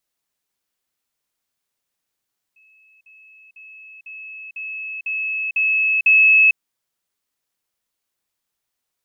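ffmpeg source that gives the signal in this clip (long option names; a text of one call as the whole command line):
ffmpeg -f lavfi -i "aevalsrc='pow(10,(-51+6*floor(t/0.5))/20)*sin(2*PI*2590*t)*clip(min(mod(t,0.5),0.45-mod(t,0.5))/0.005,0,1)':duration=4:sample_rate=44100" out.wav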